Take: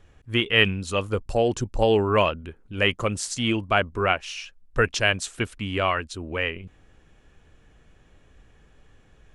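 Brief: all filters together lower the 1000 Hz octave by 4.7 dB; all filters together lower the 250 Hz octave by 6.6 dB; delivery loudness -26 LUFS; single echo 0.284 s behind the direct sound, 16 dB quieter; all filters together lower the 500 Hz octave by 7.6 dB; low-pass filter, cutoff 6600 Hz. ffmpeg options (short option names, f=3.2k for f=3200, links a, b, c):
-af "lowpass=6.6k,equalizer=f=250:t=o:g=-6.5,equalizer=f=500:t=o:g=-6.5,equalizer=f=1k:t=o:g=-4,aecho=1:1:284:0.158,volume=1dB"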